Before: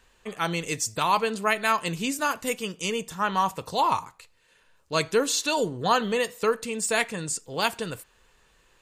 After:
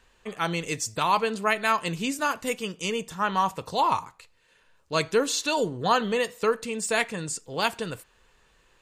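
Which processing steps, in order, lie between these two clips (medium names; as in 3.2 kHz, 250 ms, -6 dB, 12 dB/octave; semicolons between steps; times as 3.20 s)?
treble shelf 8.2 kHz -6 dB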